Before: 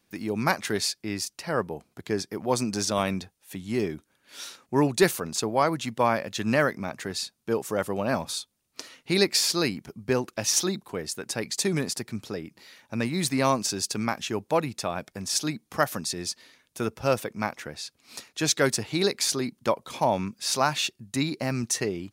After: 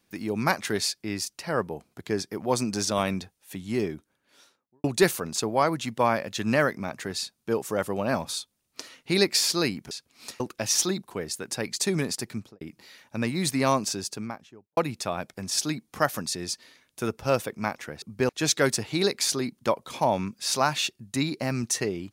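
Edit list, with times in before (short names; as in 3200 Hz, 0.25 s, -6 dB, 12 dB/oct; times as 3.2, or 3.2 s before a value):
3.7–4.84 studio fade out
9.91–10.18 swap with 17.8–18.29
12.12–12.39 studio fade out
13.54–14.55 studio fade out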